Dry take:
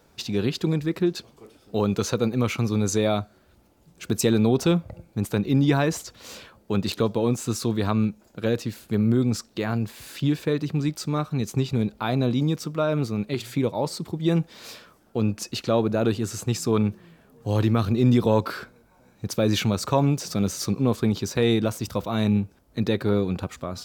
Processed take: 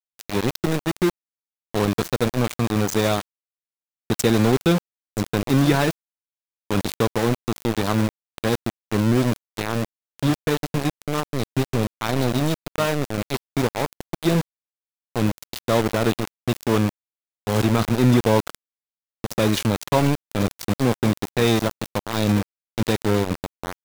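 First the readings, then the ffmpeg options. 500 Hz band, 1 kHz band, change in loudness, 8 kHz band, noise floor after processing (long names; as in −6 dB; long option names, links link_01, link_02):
+2.0 dB, +4.5 dB, +2.0 dB, +1.0 dB, below −85 dBFS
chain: -af "aecho=1:1:980:0.158,aeval=exprs='val(0)*gte(abs(val(0)),0.0794)':channel_layout=same,volume=2.5dB"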